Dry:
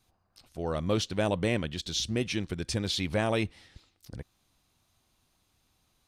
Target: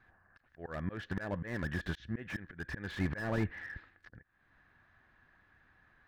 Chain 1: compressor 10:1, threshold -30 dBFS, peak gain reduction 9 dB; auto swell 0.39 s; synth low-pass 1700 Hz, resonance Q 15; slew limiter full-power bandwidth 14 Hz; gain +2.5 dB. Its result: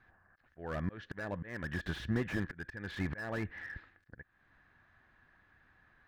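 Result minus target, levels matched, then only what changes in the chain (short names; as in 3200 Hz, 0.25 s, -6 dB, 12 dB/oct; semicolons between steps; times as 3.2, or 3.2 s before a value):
compressor: peak gain reduction +6 dB
change: compressor 10:1, threshold -23.5 dBFS, peak gain reduction 3.5 dB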